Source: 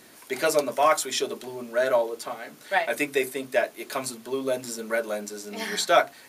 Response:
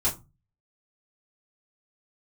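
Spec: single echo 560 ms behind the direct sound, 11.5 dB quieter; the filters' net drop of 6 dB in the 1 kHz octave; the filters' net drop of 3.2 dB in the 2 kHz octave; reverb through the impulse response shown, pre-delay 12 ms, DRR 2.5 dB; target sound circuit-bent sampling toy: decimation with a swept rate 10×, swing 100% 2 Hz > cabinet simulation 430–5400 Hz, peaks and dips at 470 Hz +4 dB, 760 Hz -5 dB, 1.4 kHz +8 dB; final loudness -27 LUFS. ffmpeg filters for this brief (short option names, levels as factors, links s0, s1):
-filter_complex "[0:a]equalizer=f=1000:t=o:g=-7.5,equalizer=f=2000:t=o:g=-6.5,aecho=1:1:560:0.266,asplit=2[s0][s1];[1:a]atrim=start_sample=2205,adelay=12[s2];[s1][s2]afir=irnorm=-1:irlink=0,volume=0.266[s3];[s0][s3]amix=inputs=2:normalize=0,acrusher=samples=10:mix=1:aa=0.000001:lfo=1:lforange=10:lforate=2,highpass=430,equalizer=f=470:t=q:w=4:g=4,equalizer=f=760:t=q:w=4:g=-5,equalizer=f=1400:t=q:w=4:g=8,lowpass=f=5400:w=0.5412,lowpass=f=5400:w=1.3066,volume=1.12"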